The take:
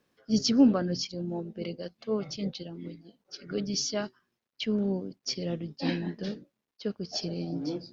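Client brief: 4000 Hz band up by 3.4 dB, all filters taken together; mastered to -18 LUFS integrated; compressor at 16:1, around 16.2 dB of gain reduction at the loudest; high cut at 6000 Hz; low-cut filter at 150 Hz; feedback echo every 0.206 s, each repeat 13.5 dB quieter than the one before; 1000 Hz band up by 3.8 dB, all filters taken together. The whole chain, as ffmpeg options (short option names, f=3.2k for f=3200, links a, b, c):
-af "highpass=150,lowpass=6k,equalizer=f=1k:t=o:g=5,equalizer=f=4k:t=o:g=6,acompressor=threshold=-31dB:ratio=16,aecho=1:1:206|412:0.211|0.0444,volume=19dB"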